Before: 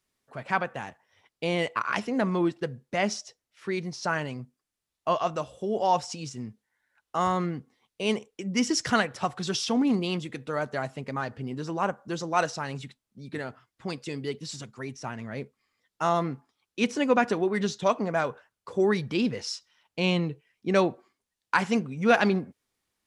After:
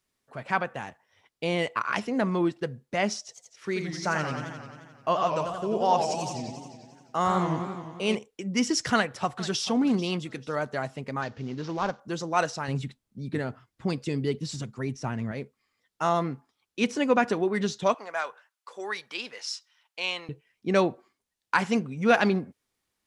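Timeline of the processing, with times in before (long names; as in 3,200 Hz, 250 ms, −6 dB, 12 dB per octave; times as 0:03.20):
0:03.19–0:08.15: feedback echo with a swinging delay time 88 ms, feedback 71%, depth 194 cents, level −6.5 dB
0:08.94–0:09.67: delay throw 440 ms, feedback 30%, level −16.5 dB
0:11.22–0:12.00: variable-slope delta modulation 32 kbit/s
0:12.68–0:15.32: low-shelf EQ 380 Hz +9 dB
0:17.94–0:20.29: high-pass filter 880 Hz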